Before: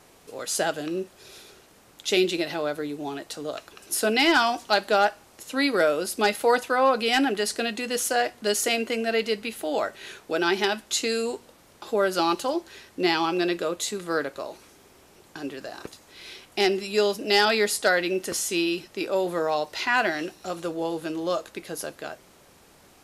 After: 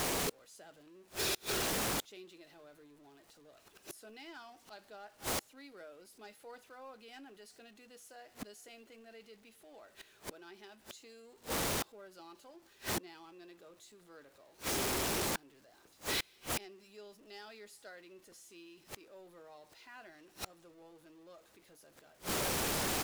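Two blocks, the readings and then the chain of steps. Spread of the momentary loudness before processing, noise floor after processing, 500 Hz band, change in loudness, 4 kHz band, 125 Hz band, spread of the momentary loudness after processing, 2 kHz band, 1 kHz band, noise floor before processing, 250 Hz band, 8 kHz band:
15 LU, -65 dBFS, -20.0 dB, -11.5 dB, -13.5 dB, -6.0 dB, 23 LU, -17.0 dB, -17.5 dB, -55 dBFS, -17.5 dB, -8.5 dB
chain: zero-crossing step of -29 dBFS; speakerphone echo 0.4 s, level -24 dB; flipped gate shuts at -28 dBFS, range -32 dB

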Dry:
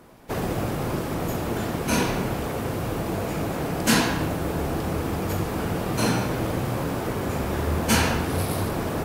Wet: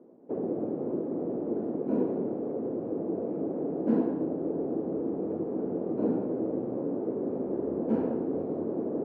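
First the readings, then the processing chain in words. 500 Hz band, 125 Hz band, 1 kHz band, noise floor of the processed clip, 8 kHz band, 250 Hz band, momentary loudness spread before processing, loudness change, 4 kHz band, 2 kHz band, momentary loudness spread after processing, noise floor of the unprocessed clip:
-2.0 dB, -15.5 dB, -15.5 dB, -36 dBFS, under -40 dB, -2.5 dB, 7 LU, -5.5 dB, under -40 dB, under -25 dB, 4 LU, -30 dBFS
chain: Butterworth band-pass 350 Hz, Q 1.2

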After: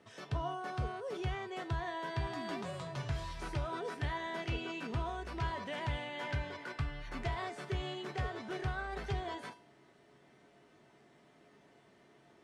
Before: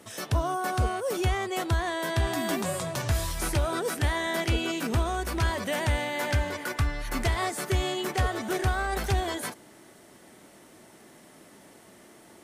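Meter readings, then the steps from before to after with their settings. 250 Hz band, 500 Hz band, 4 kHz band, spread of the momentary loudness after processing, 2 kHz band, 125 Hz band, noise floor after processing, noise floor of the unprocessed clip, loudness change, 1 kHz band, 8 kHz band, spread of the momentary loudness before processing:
-11.5 dB, -11.0 dB, -12.0 dB, 3 LU, -11.0 dB, -10.0 dB, -64 dBFS, -53 dBFS, -11.0 dB, -9.5 dB, -22.0 dB, 2 LU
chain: LPF 4000 Hz 12 dB/oct; resonator 140 Hz, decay 0.36 s, harmonics odd, mix 80%; gain +1 dB

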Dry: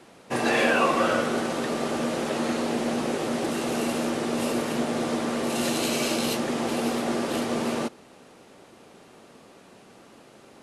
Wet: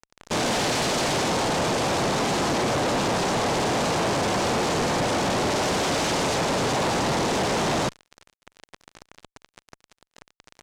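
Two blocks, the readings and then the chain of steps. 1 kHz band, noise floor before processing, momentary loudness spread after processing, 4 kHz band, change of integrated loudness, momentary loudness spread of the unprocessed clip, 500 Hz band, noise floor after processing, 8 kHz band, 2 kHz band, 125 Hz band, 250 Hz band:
+5.0 dB, -52 dBFS, 1 LU, +5.5 dB, +2.5 dB, 6 LU, +2.0 dB, under -85 dBFS, +5.5 dB, +2.0 dB, +8.0 dB, -1.0 dB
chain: noise vocoder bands 2; fuzz box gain 47 dB, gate -42 dBFS; air absorption 58 m; gain -8.5 dB

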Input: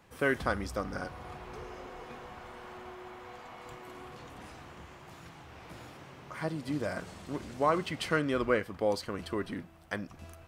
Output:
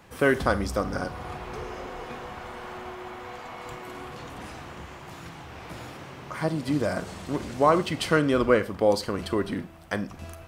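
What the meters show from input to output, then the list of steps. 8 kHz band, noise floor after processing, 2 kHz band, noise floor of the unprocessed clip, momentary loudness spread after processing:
+8.0 dB, -44 dBFS, +5.0 dB, -52 dBFS, 19 LU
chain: dynamic EQ 2000 Hz, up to -4 dB, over -46 dBFS, Q 1.1; Schroeder reverb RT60 0.35 s, combs from 32 ms, DRR 14.5 dB; gain +8 dB

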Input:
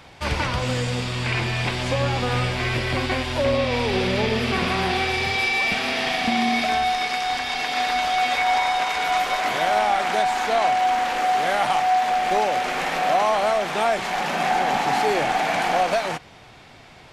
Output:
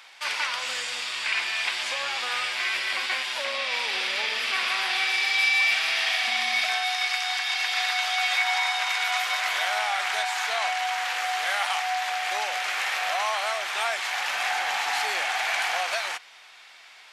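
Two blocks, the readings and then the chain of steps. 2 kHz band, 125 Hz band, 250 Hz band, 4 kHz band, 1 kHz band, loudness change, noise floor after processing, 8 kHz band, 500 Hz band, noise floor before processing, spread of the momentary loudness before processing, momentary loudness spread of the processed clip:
+0.5 dB, under -40 dB, under -25 dB, +1.5 dB, -8.5 dB, -3.0 dB, -50 dBFS, +1.5 dB, -13.5 dB, -46 dBFS, 4 LU, 5 LU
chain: HPF 1400 Hz 12 dB/oct; gain +1.5 dB

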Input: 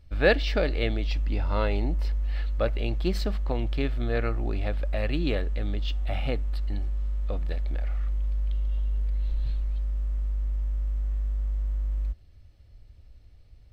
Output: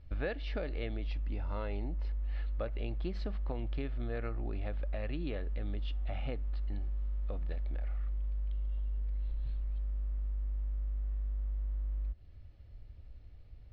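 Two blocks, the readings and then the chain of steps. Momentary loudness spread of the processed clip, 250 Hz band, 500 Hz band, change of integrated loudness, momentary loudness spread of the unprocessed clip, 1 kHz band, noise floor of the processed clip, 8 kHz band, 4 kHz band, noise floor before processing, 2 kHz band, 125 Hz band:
5 LU, -10.5 dB, -12.5 dB, -9.0 dB, 4 LU, -12.0 dB, -53 dBFS, n/a, -15.0 dB, -53 dBFS, -14.5 dB, -8.5 dB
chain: compressor 6:1, threshold -33 dBFS, peak gain reduction 17 dB; air absorption 210 m

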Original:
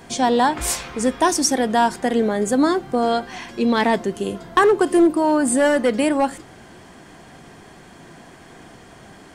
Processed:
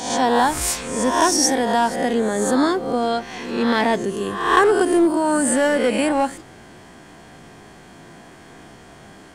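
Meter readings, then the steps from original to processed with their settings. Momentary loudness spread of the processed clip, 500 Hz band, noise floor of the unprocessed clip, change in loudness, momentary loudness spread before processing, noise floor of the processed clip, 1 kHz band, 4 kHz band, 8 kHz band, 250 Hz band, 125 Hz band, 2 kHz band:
7 LU, -0.5 dB, -45 dBFS, 0.0 dB, 8 LU, -44 dBFS, +0.5 dB, +2.0 dB, +2.0 dB, -1.0 dB, 0.0 dB, +1.5 dB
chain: spectral swells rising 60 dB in 0.78 s; gain -2 dB

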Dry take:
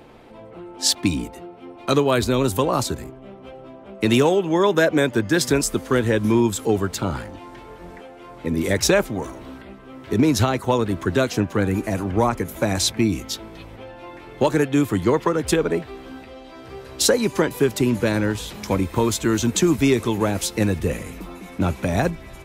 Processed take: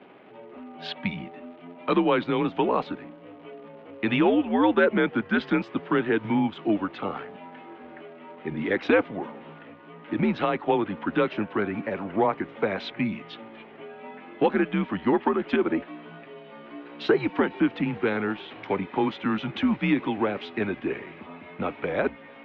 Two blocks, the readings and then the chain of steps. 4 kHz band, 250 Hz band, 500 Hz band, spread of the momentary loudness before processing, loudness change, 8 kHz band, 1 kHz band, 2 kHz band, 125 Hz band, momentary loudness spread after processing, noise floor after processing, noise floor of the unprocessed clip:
-11.0 dB, -4.0 dB, -5.0 dB, 21 LU, -5.0 dB, under -40 dB, -2.5 dB, -2.5 dB, -11.5 dB, 21 LU, -47 dBFS, -42 dBFS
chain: vibrato 0.71 Hz 32 cents; crackle 280/s -38 dBFS; mistuned SSB -100 Hz 330–3200 Hz; gain -2 dB

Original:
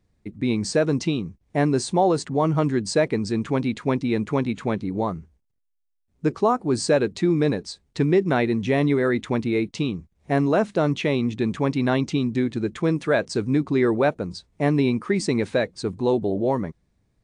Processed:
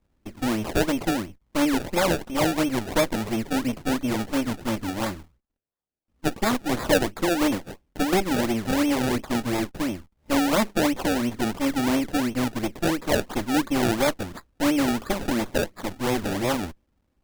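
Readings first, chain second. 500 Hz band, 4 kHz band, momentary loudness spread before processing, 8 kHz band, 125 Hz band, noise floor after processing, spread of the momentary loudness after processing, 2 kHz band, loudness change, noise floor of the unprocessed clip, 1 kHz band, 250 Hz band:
-4.5 dB, +3.5 dB, 7 LU, +3.5 dB, -7.0 dB, -72 dBFS, 8 LU, +1.0 dB, -2.0 dB, -71 dBFS, -0.5 dB, -1.5 dB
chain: minimum comb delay 3.5 ms; decimation with a swept rate 29×, swing 100% 2.9 Hz

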